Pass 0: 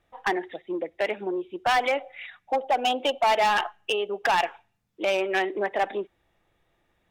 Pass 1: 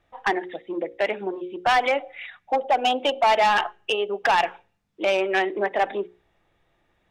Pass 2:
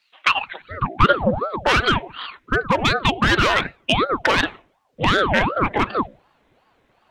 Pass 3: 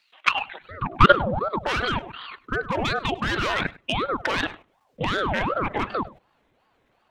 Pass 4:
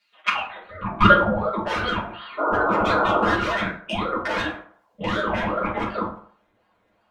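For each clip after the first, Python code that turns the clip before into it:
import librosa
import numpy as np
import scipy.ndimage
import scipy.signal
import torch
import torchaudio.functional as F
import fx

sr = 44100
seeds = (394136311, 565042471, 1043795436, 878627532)

y1 = fx.high_shelf(x, sr, hz=9500.0, db=-11.5)
y1 = fx.hum_notches(y1, sr, base_hz=60, count=9)
y1 = F.gain(torch.from_numpy(y1), 3.0).numpy()
y2 = fx.filter_sweep_highpass(y1, sr, from_hz=3400.0, to_hz=110.0, start_s=0.07, end_s=1.7, q=3.4)
y2 = fx.dynamic_eq(y2, sr, hz=930.0, q=1.4, threshold_db=-33.0, ratio=4.0, max_db=-7)
y2 = fx.ring_lfo(y2, sr, carrier_hz=570.0, swing_pct=75, hz=2.7)
y2 = F.gain(torch.from_numpy(y2), 8.5).numpy()
y3 = fx.level_steps(y2, sr, step_db=14)
y3 = y3 + 10.0 ** (-22.0 / 20.0) * np.pad(y3, (int(101 * sr / 1000.0), 0))[:len(y3)]
y3 = F.gain(torch.from_numpy(y3), 3.5).numpy()
y4 = fx.spec_paint(y3, sr, seeds[0], shape='noise', start_s=2.37, length_s=0.97, low_hz=250.0, high_hz=1500.0, level_db=-22.0)
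y4 = fx.rev_fdn(y4, sr, rt60_s=0.54, lf_ratio=0.75, hf_ratio=0.5, size_ms=29.0, drr_db=-8.0)
y4 = F.gain(torch.from_numpy(y4), -8.5).numpy()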